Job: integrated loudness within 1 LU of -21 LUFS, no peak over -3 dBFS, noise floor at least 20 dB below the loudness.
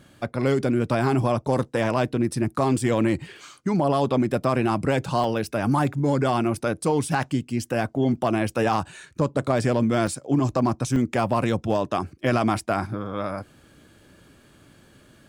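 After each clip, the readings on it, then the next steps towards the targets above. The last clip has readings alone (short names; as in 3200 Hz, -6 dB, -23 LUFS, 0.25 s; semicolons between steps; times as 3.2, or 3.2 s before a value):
dropouts 3; longest dropout 2.2 ms; loudness -24.0 LUFS; peak -8.0 dBFS; loudness target -21.0 LUFS
-> interpolate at 5.24/10.07/10.96, 2.2 ms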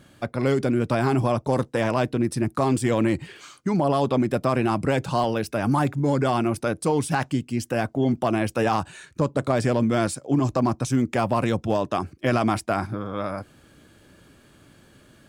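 dropouts 0; loudness -24.0 LUFS; peak -8.0 dBFS; loudness target -21.0 LUFS
-> gain +3 dB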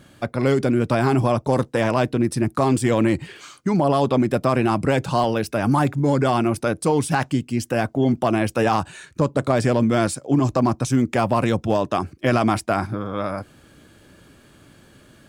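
loudness -21.0 LUFS; peak -5.0 dBFS; noise floor -52 dBFS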